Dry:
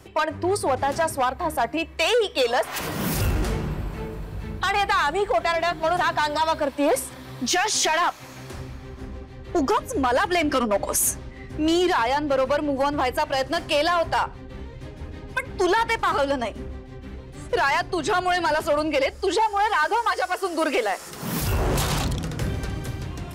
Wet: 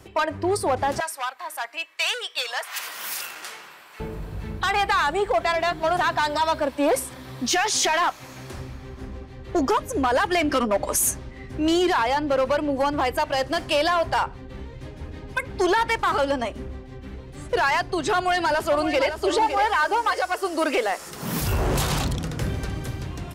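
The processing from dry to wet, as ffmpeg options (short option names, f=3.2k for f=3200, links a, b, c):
-filter_complex "[0:a]asettb=1/sr,asplit=3[a][b][c];[a]atrim=end=1.004[d];[b]atrim=start=1:end=4,asetpts=PTS-STARTPTS,afade=t=in:d=0.004:c=qsin,afade=t=out:st=2.996:d=0.004:c=qsin,highpass=1.3k[e];[c]atrim=start=3.996[f];[d][e]acrossfade=d=0.004:c1=hsin:c2=qsin[g];[g][f]acrossfade=d=0.004:c1=qsin:c2=hsin,asplit=2[h][i];[i]afade=t=in:st=18.15:d=0.01,afade=t=out:st=19.22:d=0.01,aecho=0:1:560|1120|1680|2240:0.375837|0.112751|0.0338254|0.0101476[j];[h][j]amix=inputs=2:normalize=0"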